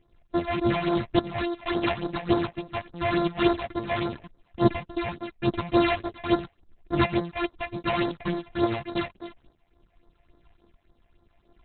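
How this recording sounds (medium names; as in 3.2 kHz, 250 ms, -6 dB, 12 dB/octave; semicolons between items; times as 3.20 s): a buzz of ramps at a fixed pitch in blocks of 128 samples; tremolo saw up 0.84 Hz, depth 50%; phasing stages 6, 3.5 Hz, lowest notch 320–2700 Hz; Opus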